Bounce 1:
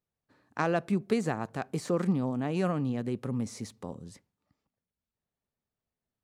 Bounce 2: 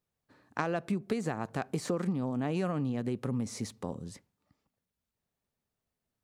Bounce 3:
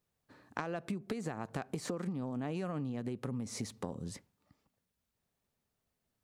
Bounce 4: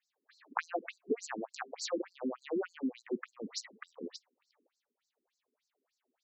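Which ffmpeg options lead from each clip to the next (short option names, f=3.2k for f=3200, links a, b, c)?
-af "acompressor=threshold=-31dB:ratio=6,volume=3dB"
-af "acompressor=threshold=-37dB:ratio=6,volume=2.5dB"
-af "afftfilt=real='re*between(b*sr/1024,300*pow(5800/300,0.5+0.5*sin(2*PI*3.4*pts/sr))/1.41,300*pow(5800/300,0.5+0.5*sin(2*PI*3.4*pts/sr))*1.41)':imag='im*between(b*sr/1024,300*pow(5800/300,0.5+0.5*sin(2*PI*3.4*pts/sr))/1.41,300*pow(5800/300,0.5+0.5*sin(2*PI*3.4*pts/sr))*1.41)':win_size=1024:overlap=0.75,volume=9.5dB"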